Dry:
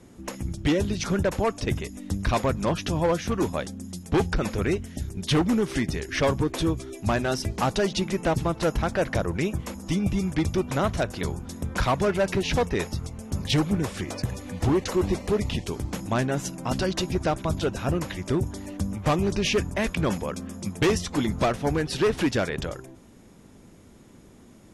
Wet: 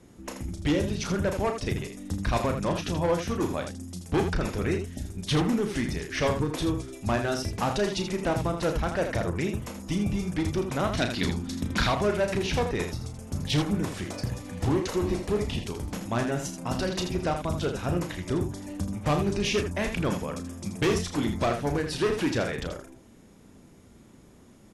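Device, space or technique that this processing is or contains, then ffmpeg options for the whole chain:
slapback doubling: -filter_complex "[0:a]asettb=1/sr,asplit=3[link_01][link_02][link_03];[link_01]atrim=end=10.924[link_04];[link_02]atrim=start=10.92:end=11.87,asetpts=PTS-STARTPTS,afade=type=in:duration=0.004:curve=qsin,afade=type=out:start_time=0.946:duration=0.004:curve=qsin,equalizer=frequency=250:width_type=o:width=1:gain=10,equalizer=frequency=500:width_type=o:width=1:gain=-4,equalizer=frequency=2000:width_type=o:width=1:gain=5,equalizer=frequency=4000:width_type=o:width=1:gain=10[link_05];[link_03]atrim=start=11.866[link_06];[link_04][link_05]acrossfade=duration=0.004:curve1=hsin:curve2=qsin[link_07];[link_07][link_06]acrossfade=duration=0.004:curve1=qsin:curve2=hsin,asplit=3[link_08][link_09][link_10];[link_09]adelay=34,volume=-7.5dB[link_11];[link_10]adelay=81,volume=-8dB[link_12];[link_08][link_11][link_12]amix=inputs=3:normalize=0,volume=-3.5dB"

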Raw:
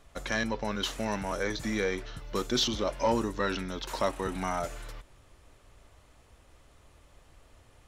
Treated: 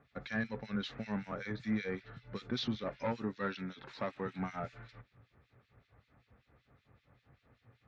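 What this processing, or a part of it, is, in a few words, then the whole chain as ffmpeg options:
guitar amplifier with harmonic tremolo: -filter_complex "[0:a]asettb=1/sr,asplit=3[link_01][link_02][link_03];[link_01]atrim=end=3.044[link_04];[link_02]atrim=start=3.04:end=4.39,asetpts=PTS-STARTPTS,afade=type=in:duration=0.004:curve=qsin,afade=type=out:start_time=1.346:duration=0.004:curve=qsin,highpass=frequency=150:poles=1[link_05];[link_03]atrim=start=4.386[link_06];[link_04][link_05]acrossfade=duration=0.004:curve1=hsin:curve2=qsin[link_07];[link_07][link_06]acrossfade=duration=0.004:curve1=qsin:curve2=hsin,acrossover=split=2100[link_08][link_09];[link_08]aeval=exprs='val(0)*(1-1/2+1/2*cos(2*PI*5.2*n/s))':channel_layout=same[link_10];[link_09]aeval=exprs='val(0)*(1-1/2-1/2*cos(2*PI*5.2*n/s))':channel_layout=same[link_11];[link_10][link_11]amix=inputs=2:normalize=0,asoftclip=type=tanh:threshold=-24dB,highpass=100,equalizer=frequency=120:width_type=q:width=4:gain=8,equalizer=frequency=210:width_type=q:width=4:gain=4,equalizer=frequency=340:width_type=q:width=4:gain=-7,equalizer=frequency=620:width_type=q:width=4:gain=-7,equalizer=frequency=990:width_type=q:width=4:gain=-8,equalizer=frequency=3000:width_type=q:width=4:gain=-9,lowpass=frequency=3700:width=0.5412,lowpass=frequency=3700:width=1.3066"

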